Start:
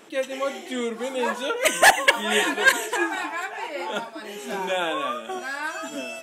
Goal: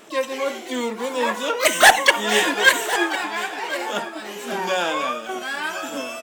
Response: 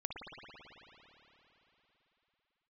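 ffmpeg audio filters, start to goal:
-filter_complex "[0:a]asplit=2[link_01][link_02];[link_02]asetrate=88200,aresample=44100,atempo=0.5,volume=-9dB[link_03];[link_01][link_03]amix=inputs=2:normalize=0,aecho=1:1:1054:0.168,asplit=2[link_04][link_05];[1:a]atrim=start_sample=2205,atrim=end_sample=3087[link_06];[link_05][link_06]afir=irnorm=-1:irlink=0,volume=-6.5dB[link_07];[link_04][link_07]amix=inputs=2:normalize=0"

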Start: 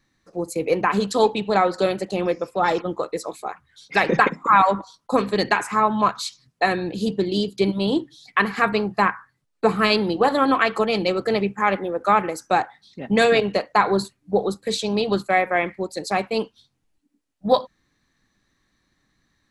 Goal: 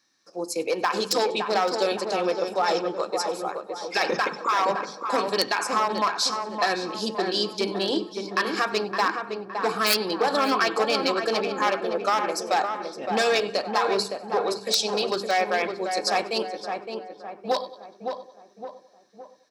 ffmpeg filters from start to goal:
ffmpeg -i in.wav -filter_complex "[0:a]bandreject=frequency=2000:width=7.9,asplit=2[link_01][link_02];[link_02]aecho=0:1:96|192|288|384:0.0891|0.0437|0.0214|0.0105[link_03];[link_01][link_03]amix=inputs=2:normalize=0,aeval=exprs='clip(val(0),-1,0.211)':channel_layout=same,bandreject=frequency=50:width_type=h:width=6,bandreject=frequency=100:width_type=h:width=6,bandreject=frequency=150:width_type=h:width=6,bandreject=frequency=200:width_type=h:width=6,bandreject=frequency=250:width_type=h:width=6,bandreject=frequency=300:width_type=h:width=6,bandreject=frequency=350:width_type=h:width=6,bandreject=frequency=400:width_type=h:width=6,bandreject=frequency=450:width_type=h:width=6,alimiter=limit=-13dB:level=0:latency=1:release=73,equalizer=frequency=5300:width_type=o:width=0.36:gain=14.5,aeval=exprs='(mod(3.16*val(0)+1,2)-1)/3.16':channel_layout=same,highpass=270,lowshelf=frequency=410:gain=-4.5,asplit=2[link_04][link_05];[link_05]adelay=564,lowpass=frequency=1600:poles=1,volume=-5dB,asplit=2[link_06][link_07];[link_07]adelay=564,lowpass=frequency=1600:poles=1,volume=0.49,asplit=2[link_08][link_09];[link_09]adelay=564,lowpass=frequency=1600:poles=1,volume=0.49,asplit=2[link_10][link_11];[link_11]adelay=564,lowpass=frequency=1600:poles=1,volume=0.49,asplit=2[link_12][link_13];[link_13]adelay=564,lowpass=frequency=1600:poles=1,volume=0.49,asplit=2[link_14][link_15];[link_15]adelay=564,lowpass=frequency=1600:poles=1,volume=0.49[link_16];[link_06][link_08][link_10][link_12][link_14][link_16]amix=inputs=6:normalize=0[link_17];[link_04][link_17]amix=inputs=2:normalize=0" out.wav

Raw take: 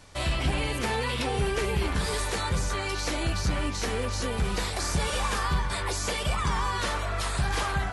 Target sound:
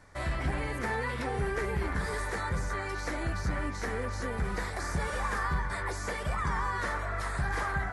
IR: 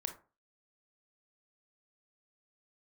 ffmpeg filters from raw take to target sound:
-af "highshelf=frequency=2300:width_type=q:width=3:gain=-6,volume=-4.5dB"

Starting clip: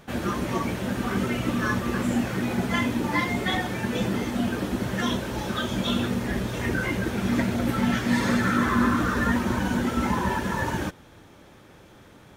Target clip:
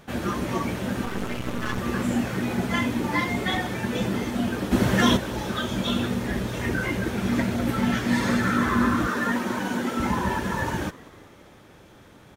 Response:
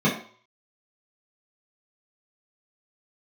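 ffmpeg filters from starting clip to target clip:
-filter_complex "[0:a]asettb=1/sr,asplit=3[link_01][link_02][link_03];[link_01]atrim=end=1.054[link_04];[link_02]atrim=start=1.05:end=1.78,asetpts=PTS-STARTPTS,afade=type=in:duration=0.004:curve=qsin,afade=type=out:start_time=0.726:duration=0.004:curve=qsin,aeval=exprs='max(val(0),0)':channel_layout=same[link_05];[link_03]atrim=start=1.776[link_06];[link_04][link_05]acrossfade=duration=0.004:curve1=hsin:curve2=qsin[link_07];[link_07][link_06]acrossfade=duration=0.004:curve1=qsin:curve2=hsin,asplit=3[link_08][link_09][link_10];[link_08]afade=type=out:start_time=4.71:duration=0.02[link_11];[link_09]acontrast=82,afade=type=in:start_time=4.71:duration=0.02,afade=type=out:start_time=5.16:duration=0.02[link_12];[link_10]afade=type=in:start_time=5.16:duration=0.02[link_13];[link_11][link_12][link_13]amix=inputs=3:normalize=0,asettb=1/sr,asplit=3[link_14][link_15][link_16];[link_14]atrim=end=9.074[link_17];[link_15]atrim=start=9.07:end=10,asetpts=PTS-STARTPTS,afade=type=in:duration=0.004:curve=qsin,afade=type=out:start_time=0.926:duration=0.004:curve=qsin,highpass=210[link_18];[link_16]atrim=start=9.996[link_19];[link_17][link_18]acrossfade=duration=0.004:curve1=hsin:curve2=qsin[link_20];[link_20][link_19]acrossfade=duration=0.004:curve1=qsin:curve2=hsin,asplit=5[link_21][link_22][link_23][link_24][link_25];[link_22]adelay=195,afreqshift=95,volume=-22dB[link_26];[link_23]adelay=390,afreqshift=190,volume=-26.7dB[link_27];[link_24]adelay=585,afreqshift=285,volume=-31.5dB[link_28];[link_25]adelay=780,afreqshift=380,volume=-36.2dB[link_29];[link_21][link_26][link_27][link_28][link_29]amix=inputs=5:normalize=0"

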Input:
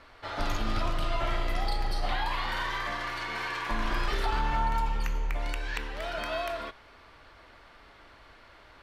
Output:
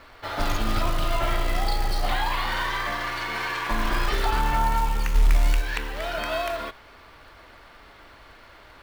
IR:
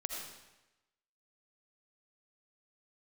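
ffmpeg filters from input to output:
-filter_complex "[0:a]asplit=3[link_01][link_02][link_03];[link_01]afade=type=out:start_time=5.14:duration=0.02[link_04];[link_02]asubboost=boost=2:cutoff=230,afade=type=in:start_time=5.14:duration=0.02,afade=type=out:start_time=5.6:duration=0.02[link_05];[link_03]afade=type=in:start_time=5.6:duration=0.02[link_06];[link_04][link_05][link_06]amix=inputs=3:normalize=0,acrusher=bits=5:mode=log:mix=0:aa=0.000001,volume=5dB"

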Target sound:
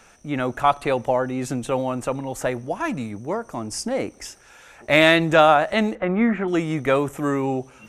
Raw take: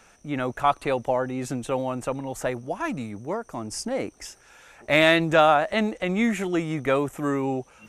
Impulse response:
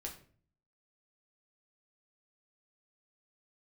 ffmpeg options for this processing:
-filter_complex "[0:a]asettb=1/sr,asplit=3[link_01][link_02][link_03];[link_01]atrim=end=5.954[link_04];[link_02]atrim=start=5.95:end=6.48,asetpts=PTS-STARTPTS,afade=type=in:duration=0.004:curve=qsin,afade=type=out:start_time=0.526:duration=0.004:curve=qsin,lowpass=frequency=1400:width_type=q:width=1.6[link_05];[link_03]atrim=start=6.476[link_06];[link_04][link_05]acrossfade=duration=0.004:curve1=hsin:curve2=qsin[link_07];[link_07][link_06]acrossfade=duration=0.004:curve1=qsin:curve2=hsin,asplit=2[link_08][link_09];[1:a]atrim=start_sample=2205,asetrate=32634,aresample=44100[link_10];[link_09][link_10]afir=irnorm=-1:irlink=0,volume=-18dB[link_11];[link_08][link_11]amix=inputs=2:normalize=0,volume=2.5dB"

